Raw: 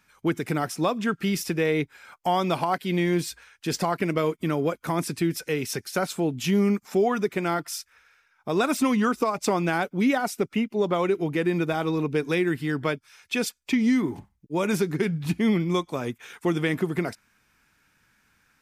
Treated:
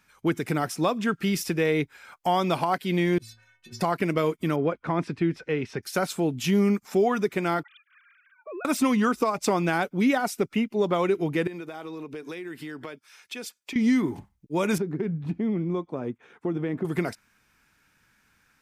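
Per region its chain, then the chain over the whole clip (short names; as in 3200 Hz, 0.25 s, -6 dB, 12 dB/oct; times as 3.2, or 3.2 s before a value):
3.18–3.81 tone controls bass +9 dB, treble -8 dB + negative-ratio compressor -26 dBFS, ratio -0.5 + metallic resonator 110 Hz, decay 0.65 s, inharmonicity 0.03
4.56–5.83 LPF 2600 Hz + mismatched tape noise reduction decoder only
7.63–8.65 sine-wave speech + compressor 5:1, threshold -36 dBFS + mismatched tape noise reduction encoder only
11.47–13.76 HPF 240 Hz + compressor 8:1, threshold -33 dBFS
14.78–16.85 band-pass 300 Hz, Q 0.54 + compressor 2.5:1, threshold -24 dBFS
whole clip: dry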